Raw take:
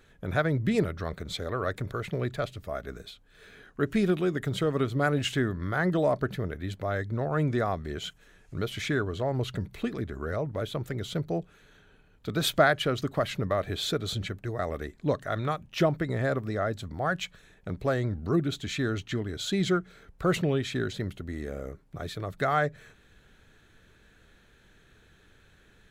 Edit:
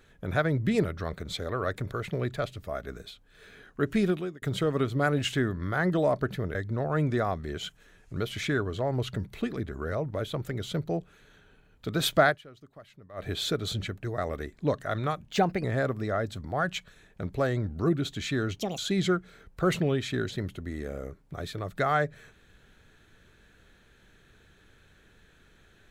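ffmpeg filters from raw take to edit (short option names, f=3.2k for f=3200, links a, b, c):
-filter_complex "[0:a]asplit=9[a][b][c][d][e][f][g][h][i];[a]atrim=end=4.42,asetpts=PTS-STARTPTS,afade=t=out:st=4.05:d=0.37[j];[b]atrim=start=4.42:end=6.552,asetpts=PTS-STARTPTS,afade=t=in:d=0.004:c=hsin[k];[c]atrim=start=6.958:end=12.83,asetpts=PTS-STARTPTS,afade=t=out:st=5.742:d=0.13:c=qua:silence=0.0794328[l];[d]atrim=start=12.83:end=13.52,asetpts=PTS-STARTPTS,volume=-22dB[m];[e]atrim=start=13.52:end=15.704,asetpts=PTS-STARTPTS,afade=t=in:d=0.13:c=qua:silence=0.0794328[n];[f]atrim=start=15.7:end=16.11,asetpts=PTS-STARTPTS,asetrate=51597,aresample=44100[o];[g]atrim=start=16.106:end=19.064[p];[h]atrim=start=19.06:end=19.4,asetpts=PTS-STARTPTS,asetrate=78939,aresample=44100[q];[i]atrim=start=19.396[r];[j][k]concat=n=2:v=0:a=1[s];[l][m][n]concat=n=3:v=0:a=1[t];[s][t]acrossfade=d=0.004:c1=hsin:c2=hsin[u];[u][o]acrossfade=d=0.004:c1=hsin:c2=hsin[v];[v][p]acrossfade=d=0.004:c1=hsin:c2=hsin[w];[w][q]acrossfade=d=0.004:c1=hsin:c2=hsin[x];[x][r]acrossfade=d=0.004:c1=hsin:c2=hsin"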